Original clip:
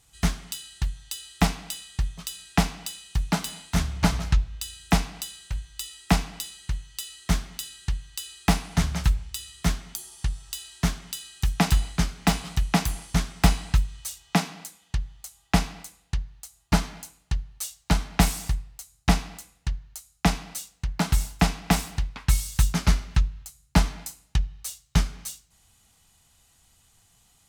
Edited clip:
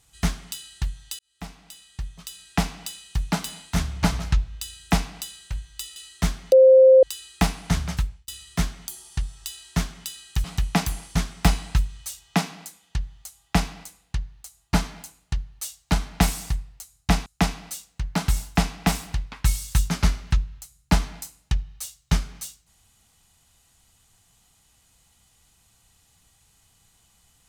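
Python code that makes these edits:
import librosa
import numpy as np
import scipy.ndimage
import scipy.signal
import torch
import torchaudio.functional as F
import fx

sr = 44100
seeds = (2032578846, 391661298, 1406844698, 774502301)

y = fx.edit(x, sr, fx.fade_in_span(start_s=1.19, length_s=1.67),
    fx.cut(start_s=5.96, length_s=1.07),
    fx.bleep(start_s=7.59, length_s=0.51, hz=524.0, db=-8.5),
    fx.fade_out_span(start_s=8.94, length_s=0.41),
    fx.cut(start_s=11.51, length_s=0.92),
    fx.cut(start_s=19.25, length_s=0.85), tone=tone)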